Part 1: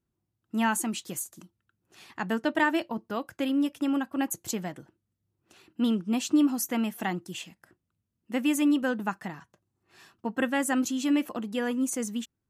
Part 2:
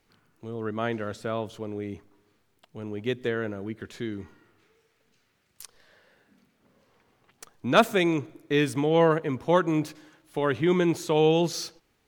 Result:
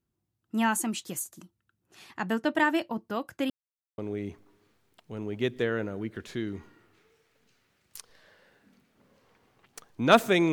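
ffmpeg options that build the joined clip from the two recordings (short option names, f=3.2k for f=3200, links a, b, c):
-filter_complex "[0:a]apad=whole_dur=10.52,atrim=end=10.52,asplit=2[a][b];[a]atrim=end=3.5,asetpts=PTS-STARTPTS,afade=t=out:st=3.496:d=0.004:c=hsin[c];[b]atrim=start=3.5:end=3.98,asetpts=PTS-STARTPTS,volume=0[d];[1:a]atrim=start=1.63:end=8.17,asetpts=PTS-STARTPTS,afade=t=in:d=0.004:c=hsin[e];[c][d][e]concat=n=3:v=0:a=1"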